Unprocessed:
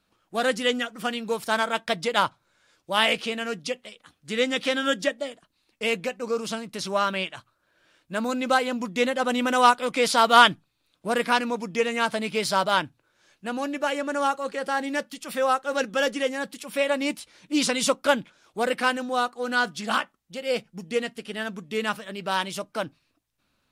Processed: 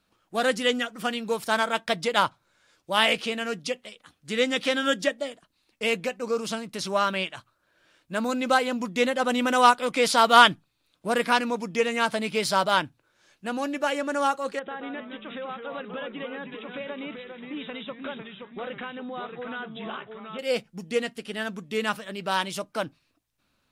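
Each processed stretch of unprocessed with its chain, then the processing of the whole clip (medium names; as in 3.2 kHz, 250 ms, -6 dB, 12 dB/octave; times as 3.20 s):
14.59–20.39 s: compression 5:1, threshold -33 dBFS + ever faster or slower copies 120 ms, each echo -2 st, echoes 3, each echo -6 dB + brick-wall FIR low-pass 3.9 kHz
whole clip: none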